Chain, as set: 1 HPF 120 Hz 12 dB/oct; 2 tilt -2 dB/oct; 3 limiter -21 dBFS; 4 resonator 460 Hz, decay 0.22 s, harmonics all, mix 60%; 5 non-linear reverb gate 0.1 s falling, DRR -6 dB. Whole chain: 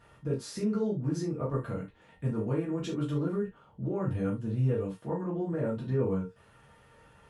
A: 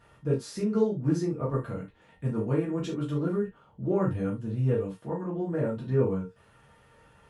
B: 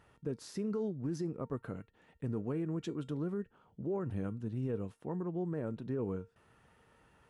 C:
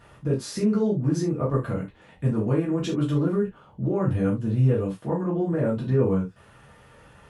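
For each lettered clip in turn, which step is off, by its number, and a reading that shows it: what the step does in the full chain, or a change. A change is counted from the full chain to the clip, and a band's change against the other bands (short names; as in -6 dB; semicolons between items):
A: 3, crest factor change +2.0 dB; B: 5, crest factor change -3.0 dB; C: 4, loudness change +7.5 LU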